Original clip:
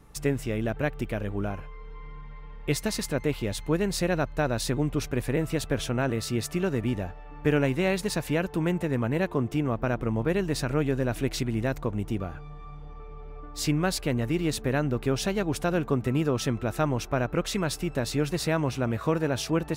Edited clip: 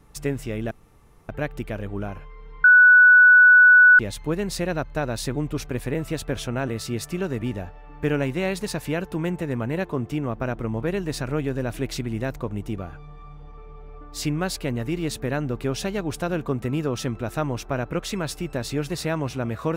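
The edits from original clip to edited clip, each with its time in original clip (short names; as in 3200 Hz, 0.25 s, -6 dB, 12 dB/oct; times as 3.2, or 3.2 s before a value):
0.71 insert room tone 0.58 s
2.06–3.41 bleep 1480 Hz -8.5 dBFS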